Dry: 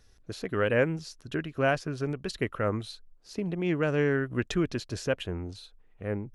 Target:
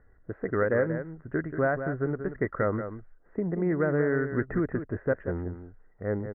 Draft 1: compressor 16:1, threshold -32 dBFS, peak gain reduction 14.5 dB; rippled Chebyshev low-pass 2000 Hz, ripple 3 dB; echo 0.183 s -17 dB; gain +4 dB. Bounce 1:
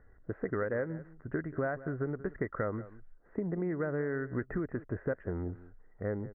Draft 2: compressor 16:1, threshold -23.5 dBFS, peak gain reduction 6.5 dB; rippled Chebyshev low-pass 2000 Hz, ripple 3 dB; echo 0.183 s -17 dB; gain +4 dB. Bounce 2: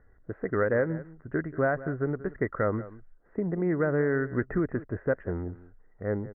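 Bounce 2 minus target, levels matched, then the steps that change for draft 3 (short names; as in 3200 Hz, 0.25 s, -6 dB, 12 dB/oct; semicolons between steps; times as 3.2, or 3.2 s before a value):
echo-to-direct -7.5 dB
change: echo 0.183 s -9.5 dB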